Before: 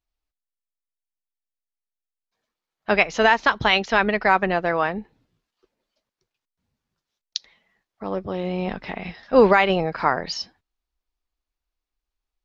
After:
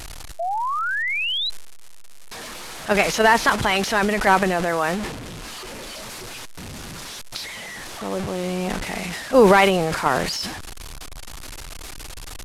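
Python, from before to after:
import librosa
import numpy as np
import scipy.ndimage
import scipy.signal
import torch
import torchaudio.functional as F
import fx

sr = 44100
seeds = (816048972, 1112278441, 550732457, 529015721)

p1 = fx.delta_mod(x, sr, bps=64000, step_db=-28.0)
p2 = fx.level_steps(p1, sr, step_db=17)
p3 = p1 + (p2 * librosa.db_to_amplitude(-2.0))
p4 = fx.spec_paint(p3, sr, seeds[0], shape='rise', start_s=0.39, length_s=1.11, low_hz=650.0, high_hz=4100.0, level_db=-22.0)
p5 = fx.transient(p4, sr, attack_db=-1, sustain_db=8)
y = p5 * librosa.db_to_amplitude(-2.0)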